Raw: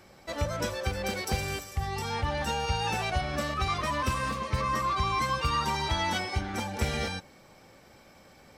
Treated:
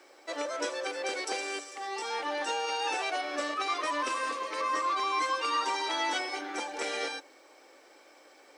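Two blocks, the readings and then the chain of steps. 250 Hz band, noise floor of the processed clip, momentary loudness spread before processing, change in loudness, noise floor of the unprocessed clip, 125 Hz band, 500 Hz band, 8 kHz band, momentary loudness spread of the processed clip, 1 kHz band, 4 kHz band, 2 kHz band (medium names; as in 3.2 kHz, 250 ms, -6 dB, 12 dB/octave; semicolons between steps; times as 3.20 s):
-6.0 dB, -58 dBFS, 6 LU, -1.5 dB, -55 dBFS, under -40 dB, -0.5 dB, -0.5 dB, 7 LU, -0.5 dB, -1.0 dB, 0.0 dB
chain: Chebyshev band-pass 290–9600 Hz, order 5; bit crusher 12-bit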